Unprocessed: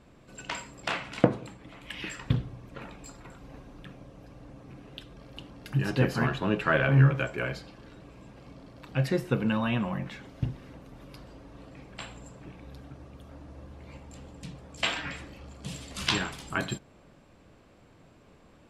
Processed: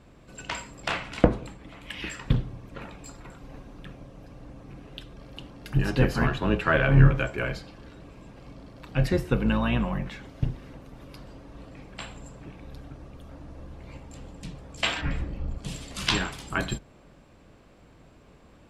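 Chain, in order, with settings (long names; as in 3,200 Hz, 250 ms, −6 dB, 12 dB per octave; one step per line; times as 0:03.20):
sub-octave generator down 2 octaves, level −3 dB
0:15.01–0:15.58: spectral tilt −3 dB per octave
level +2 dB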